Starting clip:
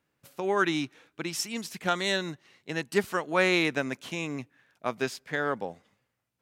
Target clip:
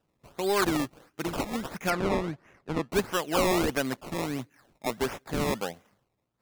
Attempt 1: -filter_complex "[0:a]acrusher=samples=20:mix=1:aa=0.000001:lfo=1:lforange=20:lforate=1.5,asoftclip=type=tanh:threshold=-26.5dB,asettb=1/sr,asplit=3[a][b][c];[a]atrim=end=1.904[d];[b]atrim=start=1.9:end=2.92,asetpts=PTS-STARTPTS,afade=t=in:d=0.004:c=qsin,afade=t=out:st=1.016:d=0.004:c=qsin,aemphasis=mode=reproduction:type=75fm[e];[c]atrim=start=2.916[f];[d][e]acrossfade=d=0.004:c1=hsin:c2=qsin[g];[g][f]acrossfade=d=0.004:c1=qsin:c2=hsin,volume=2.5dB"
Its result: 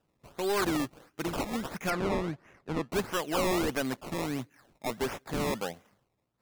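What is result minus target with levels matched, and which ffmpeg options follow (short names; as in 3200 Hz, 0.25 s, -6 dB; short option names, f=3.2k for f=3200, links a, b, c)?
soft clip: distortion +6 dB
-filter_complex "[0:a]acrusher=samples=20:mix=1:aa=0.000001:lfo=1:lforange=20:lforate=1.5,asoftclip=type=tanh:threshold=-19.5dB,asettb=1/sr,asplit=3[a][b][c];[a]atrim=end=1.904[d];[b]atrim=start=1.9:end=2.92,asetpts=PTS-STARTPTS,afade=t=in:d=0.004:c=qsin,afade=t=out:st=1.016:d=0.004:c=qsin,aemphasis=mode=reproduction:type=75fm[e];[c]atrim=start=2.916[f];[d][e]acrossfade=d=0.004:c1=hsin:c2=qsin[g];[g][f]acrossfade=d=0.004:c1=qsin:c2=hsin,volume=2.5dB"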